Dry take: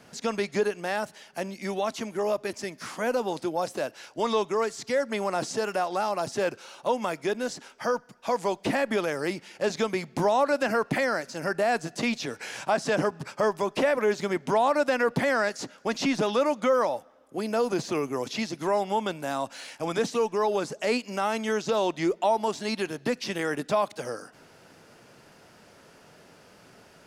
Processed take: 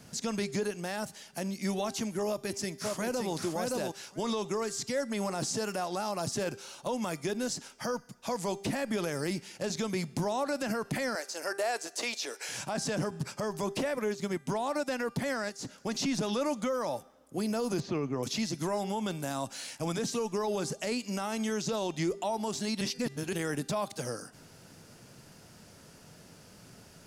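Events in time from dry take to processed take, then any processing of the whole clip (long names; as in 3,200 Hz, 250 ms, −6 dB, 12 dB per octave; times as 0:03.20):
0:02.27–0:03.34: delay throw 570 ms, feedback 10%, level −3.5 dB
0:11.15–0:12.49: high-pass filter 400 Hz 24 dB per octave
0:13.90–0:15.65: expander for the loud parts, over −42 dBFS
0:17.80–0:18.23: high-frequency loss of the air 220 metres
0:22.81–0:23.33: reverse
whole clip: bass and treble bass +11 dB, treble +10 dB; hum removal 396.6 Hz, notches 34; brickwall limiter −18.5 dBFS; level −4.5 dB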